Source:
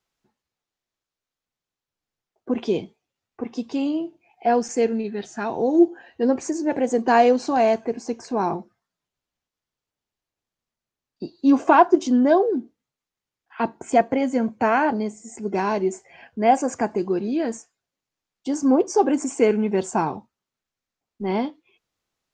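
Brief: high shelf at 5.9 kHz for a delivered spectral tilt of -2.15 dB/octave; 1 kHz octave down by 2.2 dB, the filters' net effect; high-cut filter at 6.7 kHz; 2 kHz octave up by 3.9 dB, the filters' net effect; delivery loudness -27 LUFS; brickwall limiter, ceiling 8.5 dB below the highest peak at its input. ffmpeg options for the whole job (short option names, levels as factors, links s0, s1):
-af "lowpass=6700,equalizer=f=1000:t=o:g=-4.5,equalizer=f=2000:t=o:g=7.5,highshelf=f=5900:g=-5,volume=0.75,alimiter=limit=0.168:level=0:latency=1"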